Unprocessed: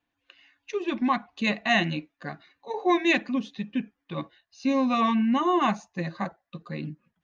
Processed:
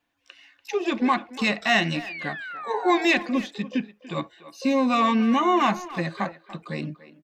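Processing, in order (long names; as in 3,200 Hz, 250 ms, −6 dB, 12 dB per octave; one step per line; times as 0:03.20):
low-shelf EQ 280 Hz −5 dB
in parallel at −1 dB: brickwall limiter −21.5 dBFS, peak gain reduction 11 dB
on the sum: sound drawn into the spectrogram fall, 0:02.06–0:03.07, 680–2,600 Hz −36 dBFS
pitch-shifted copies added +12 semitones −16 dB
far-end echo of a speakerphone 290 ms, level −15 dB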